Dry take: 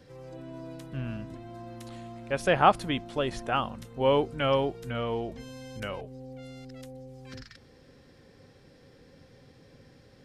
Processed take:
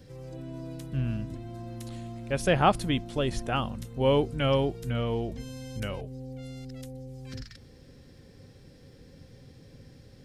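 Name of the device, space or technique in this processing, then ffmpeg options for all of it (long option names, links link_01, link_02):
smiley-face EQ: -af "lowshelf=frequency=190:gain=9,equalizer=frequency=1100:width_type=o:width=1.7:gain=-4,highshelf=frequency=5600:gain=6.5"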